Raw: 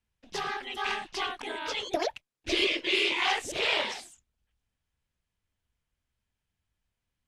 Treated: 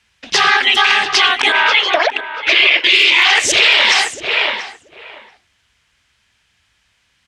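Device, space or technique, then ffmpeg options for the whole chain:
mastering chain: -filter_complex "[0:a]lowpass=6.6k,asettb=1/sr,asplit=3[a][b][c];[a]atrim=end=1.524[d];[b]atrim=start=1.52:end=2.84,asetpts=PTS-STARTPTS,afade=t=in:d=0.004:c=qsin,afade=t=out:st=1.316:d=0.004:c=qsin,acrossover=split=480 2900:gain=0.158 1 0.126[e][f][g];[e][f][g]amix=inputs=3:normalize=0[h];[c]atrim=start=2.836[i];[d][h]acrossfade=d=0.004:c1=hsin:c2=qsin[j];[j][i]acrossfade=d=0.004:c1=qsin:c2=hsin,highpass=51,equalizer=f=1.8k:t=o:w=1.7:g=4,asplit=2[k][l];[l]adelay=685,lowpass=f=1.5k:p=1,volume=-11dB,asplit=2[m][n];[n]adelay=685,lowpass=f=1.5k:p=1,volume=0.17[o];[k][m][o]amix=inputs=3:normalize=0,acompressor=threshold=-32dB:ratio=1.5,tiltshelf=f=1.1k:g=-7,asoftclip=type=hard:threshold=-13.5dB,alimiter=level_in=23dB:limit=-1dB:release=50:level=0:latency=1,volume=-1dB"

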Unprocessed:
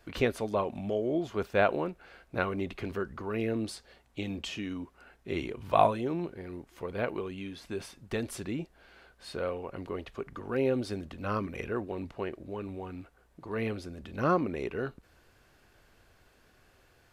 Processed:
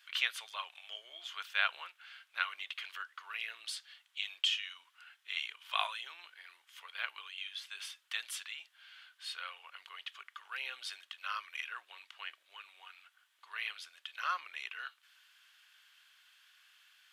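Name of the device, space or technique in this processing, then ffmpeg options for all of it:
headphones lying on a table: -af "highpass=f=1.3k:w=0.5412,highpass=f=1.3k:w=1.3066,equalizer=f=3.2k:t=o:w=0.48:g=11"

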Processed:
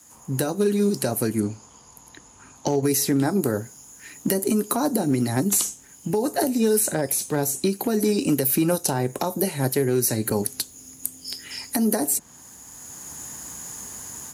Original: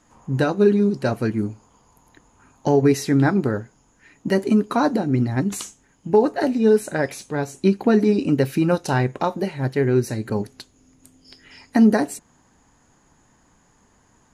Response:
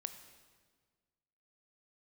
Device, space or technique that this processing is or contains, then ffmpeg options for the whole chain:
FM broadcast chain: -filter_complex "[0:a]asettb=1/sr,asplit=3[a][b][c];[a]atrim=end=1.404[d];[b]atrim=start=1.4:end=2.83,asetpts=PTS-STARTPTS,afade=t=in:d=0.004:c=qsin,afade=t=out:st=1.426:d=0.004:c=qsin,lowpass=5.6k[e];[c]atrim=start=2.826[f];[d][e]acrossfade=d=0.004:c1=hsin:c2=qsin[g];[g][f]acrossfade=d=0.004:c1=qsin:c2=hsin,highpass=f=51:w=0.5412,highpass=f=51:w=1.3066,dynaudnorm=f=550:g=3:m=14.5dB,acrossover=split=250|1000|5700[h][i][j][k];[h]acompressor=threshold=-24dB:ratio=4[l];[i]acompressor=threshold=-16dB:ratio=4[m];[j]acompressor=threshold=-37dB:ratio=4[n];[k]acompressor=threshold=-45dB:ratio=4[o];[l][m][n][o]amix=inputs=4:normalize=0,aemphasis=mode=production:type=50fm,alimiter=limit=-11dB:level=0:latency=1:release=220,asoftclip=type=hard:threshold=-12dB,lowpass=f=15k:w=0.5412,lowpass=f=15k:w=1.3066,aemphasis=mode=production:type=50fm,volume=-1dB"

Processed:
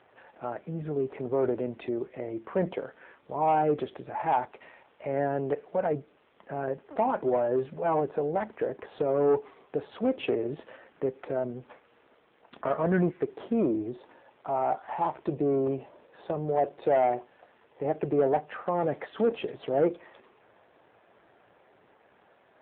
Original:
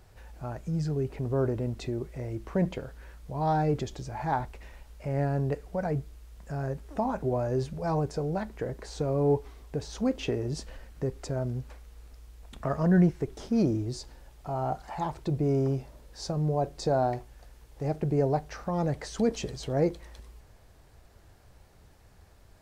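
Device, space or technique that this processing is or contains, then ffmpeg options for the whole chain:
telephone: -af "highpass=330,lowpass=3k,asoftclip=type=tanh:threshold=-22.5dB,volume=6.5dB" -ar 8000 -c:a libopencore_amrnb -b:a 7400

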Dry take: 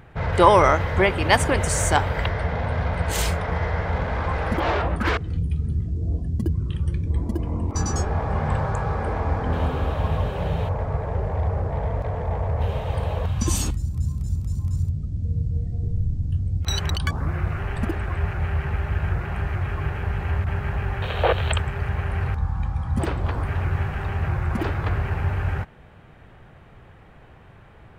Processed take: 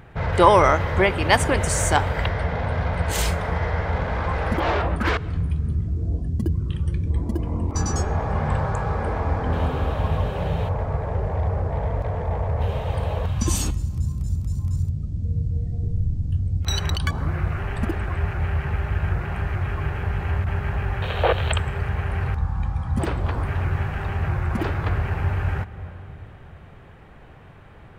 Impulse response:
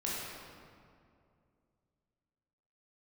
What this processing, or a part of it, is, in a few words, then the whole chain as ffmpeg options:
ducked reverb: -filter_complex "[0:a]asplit=3[a][b][c];[1:a]atrim=start_sample=2205[d];[b][d]afir=irnorm=-1:irlink=0[e];[c]apad=whole_len=1233988[f];[e][f]sidechaincompress=threshold=-31dB:ratio=8:attack=16:release=316,volume=-12dB[g];[a][g]amix=inputs=2:normalize=0"

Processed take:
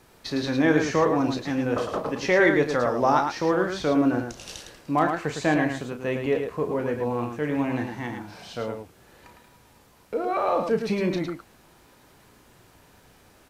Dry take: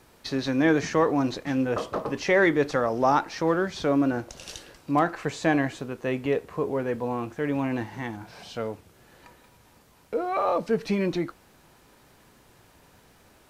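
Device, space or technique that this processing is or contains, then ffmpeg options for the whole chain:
slapback doubling: -filter_complex "[0:a]asplit=3[a][b][c];[b]adelay=33,volume=-8.5dB[d];[c]adelay=108,volume=-6dB[e];[a][d][e]amix=inputs=3:normalize=0"

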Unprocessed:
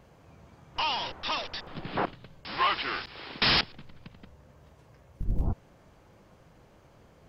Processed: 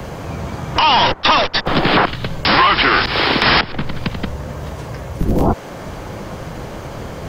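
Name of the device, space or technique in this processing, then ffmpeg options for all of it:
mastering chain: -filter_complex "[0:a]asplit=3[a][b][c];[a]afade=t=out:st=1.12:d=0.02[d];[b]agate=range=-18dB:threshold=-35dB:ratio=16:detection=peak,afade=t=in:st=1.12:d=0.02,afade=t=out:st=1.65:d=0.02[e];[c]afade=t=in:st=1.65:d=0.02[f];[d][e][f]amix=inputs=3:normalize=0,equalizer=f=2.6k:t=o:w=0.25:g=-2,acrossover=split=110|270|1100|2300[g][h][i][j][k];[g]acompressor=threshold=-49dB:ratio=4[l];[h]acompressor=threshold=-51dB:ratio=4[m];[i]acompressor=threshold=-41dB:ratio=4[n];[j]acompressor=threshold=-38dB:ratio=4[o];[k]acompressor=threshold=-46dB:ratio=4[p];[l][m][n][o][p]amix=inputs=5:normalize=0,acompressor=threshold=-38dB:ratio=2.5,asoftclip=type=hard:threshold=-23.5dB,alimiter=level_in=29.5dB:limit=-1dB:release=50:level=0:latency=1,volume=-1dB"

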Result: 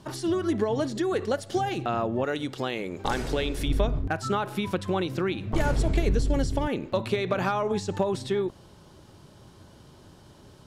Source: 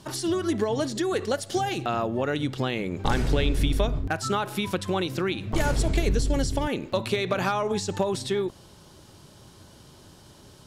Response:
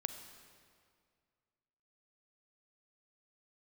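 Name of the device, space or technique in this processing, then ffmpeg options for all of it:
behind a face mask: -filter_complex "[0:a]highshelf=f=3k:g=-8,asettb=1/sr,asplit=3[a][b][c];[a]atrim=end=2.244[d];[b]atrim=start=2.24:end=3.68,asetpts=PTS-STARTPTS,afade=t=in:d=0.004:c=qsin,afade=t=out:st=1.436:d=0.004:c=qsin,bass=f=250:g=-9,treble=f=4k:g=7[e];[c]atrim=start=3.676[f];[d][e]acrossfade=d=0.004:c1=hsin:c2=qsin[g];[g][f]acrossfade=d=0.004:c1=qsin:c2=hsin"

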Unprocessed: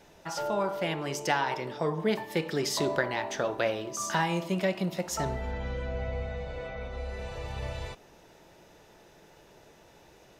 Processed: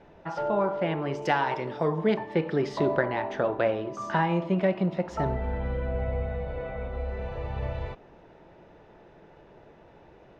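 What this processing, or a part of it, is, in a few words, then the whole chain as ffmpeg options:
phone in a pocket: -filter_complex "[0:a]asettb=1/sr,asplit=3[a][b][c];[a]atrim=end=1.224[d];[b]atrim=start=1.22:end=2.14,asetpts=PTS-STARTPTS,afade=t=in:d=0.004:c=qsin,afade=t=out:st=0.916:d=0.004:c=qsin,aemphasis=mode=production:type=75fm[e];[c]atrim=start=2.136[f];[d][e]acrossfade=d=0.004:c1=hsin:c2=qsin[g];[g][f]acrossfade=d=0.004:c1=qsin:c2=hsin,lowpass=3.1k,highshelf=f=2.2k:g=-11,volume=4.5dB"

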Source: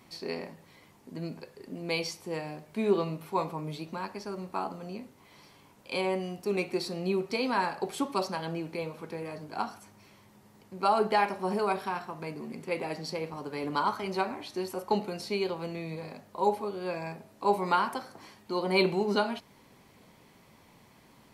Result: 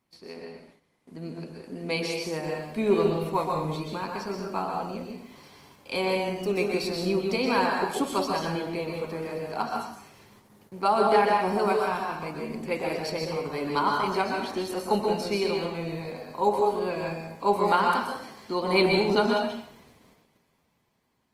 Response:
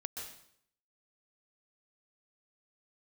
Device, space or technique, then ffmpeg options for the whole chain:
speakerphone in a meeting room: -filter_complex "[1:a]atrim=start_sample=2205[a];[0:a][a]afir=irnorm=-1:irlink=0,dynaudnorm=f=230:g=11:m=9.5dB,agate=range=-11dB:threshold=-50dB:ratio=16:detection=peak,volume=-3.5dB" -ar 48000 -c:a libopus -b:a 24k

